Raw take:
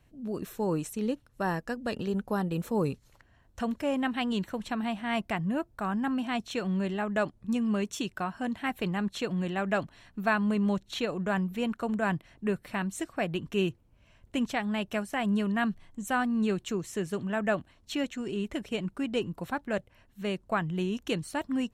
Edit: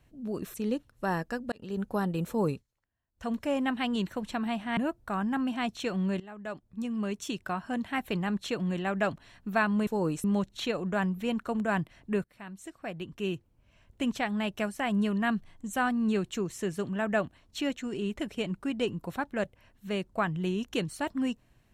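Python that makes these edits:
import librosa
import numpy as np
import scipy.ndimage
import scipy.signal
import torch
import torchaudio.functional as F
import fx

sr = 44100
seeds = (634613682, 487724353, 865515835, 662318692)

y = fx.edit(x, sr, fx.move(start_s=0.54, length_s=0.37, to_s=10.58),
    fx.fade_in_span(start_s=1.89, length_s=0.34),
    fx.fade_down_up(start_s=2.85, length_s=0.84, db=-24.0, fade_s=0.19),
    fx.cut(start_s=5.14, length_s=0.34),
    fx.fade_in_from(start_s=6.91, length_s=1.36, floor_db=-17.5),
    fx.fade_in_from(start_s=12.58, length_s=1.94, floor_db=-17.0), tone=tone)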